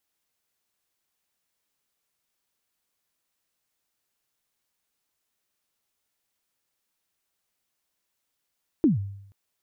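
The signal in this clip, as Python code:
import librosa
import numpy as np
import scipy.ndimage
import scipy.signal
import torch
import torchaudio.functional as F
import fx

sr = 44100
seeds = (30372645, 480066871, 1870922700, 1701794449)

y = fx.drum_kick(sr, seeds[0], length_s=0.48, level_db=-13.5, start_hz=350.0, end_hz=99.0, sweep_ms=142.0, decay_s=0.75, click=False)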